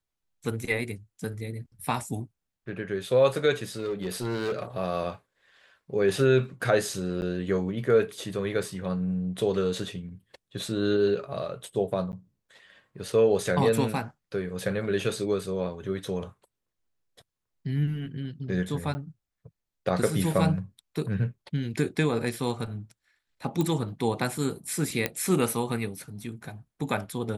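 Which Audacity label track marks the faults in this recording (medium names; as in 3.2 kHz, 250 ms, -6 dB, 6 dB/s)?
3.760000	4.630000	clipped -25.5 dBFS
7.210000	7.220000	dropout 9.9 ms
12.120000	12.130000	dropout 9.9 ms
18.940000	18.950000	dropout 10 ms
23.610000	23.610000	pop -15 dBFS
25.060000	25.060000	pop -11 dBFS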